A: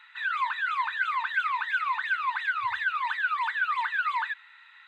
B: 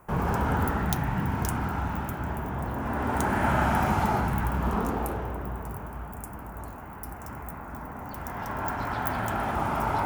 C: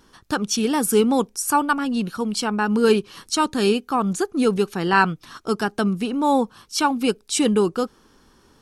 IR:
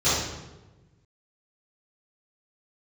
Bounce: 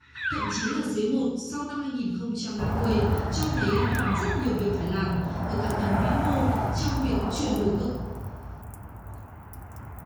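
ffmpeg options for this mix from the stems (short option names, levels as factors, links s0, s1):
-filter_complex "[0:a]adynamicequalizer=threshold=0.0158:dfrequency=1800:dqfactor=0.7:tfrequency=1800:tqfactor=0.7:attack=5:release=100:ratio=0.375:range=2.5:mode=boostabove:tftype=highshelf,volume=0.75,asplit=3[s0][s1][s2];[s0]atrim=end=0.72,asetpts=PTS-STARTPTS,afade=t=out:st=0.716:d=0.004:c=hsin[s3];[s1]atrim=start=0.72:end=3.57,asetpts=PTS-STARTPTS,volume=0[s4];[s2]atrim=start=3.57,asetpts=PTS-STARTPTS,afade=t=in:d=0.004:c=hsin[s5];[s3][s4][s5]concat=n=3:v=0:a=1,asplit=2[s6][s7];[s7]volume=0.0841[s8];[1:a]adynamicequalizer=threshold=0.00708:dfrequency=620:dqfactor=1.7:tfrequency=620:tqfactor=1.7:attack=5:release=100:ratio=0.375:range=3.5:mode=boostabove:tftype=bell,adelay=2500,volume=0.473[s9];[2:a]lowpass=6400,equalizer=f=910:t=o:w=1.8:g=-14,volume=0.112,asplit=3[s10][s11][s12];[s11]volume=0.596[s13];[s12]apad=whole_len=215128[s14];[s6][s14]sidechaincompress=threshold=0.00501:ratio=8:attack=16:release=1110[s15];[3:a]atrim=start_sample=2205[s16];[s8][s13]amix=inputs=2:normalize=0[s17];[s17][s16]afir=irnorm=-1:irlink=0[s18];[s15][s9][s10][s18]amix=inputs=4:normalize=0,equalizer=f=96:t=o:w=0.89:g=12.5"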